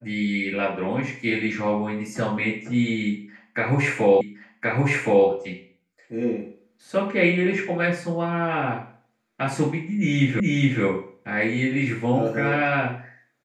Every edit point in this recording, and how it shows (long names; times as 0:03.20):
0:04.21: the same again, the last 1.07 s
0:10.40: the same again, the last 0.42 s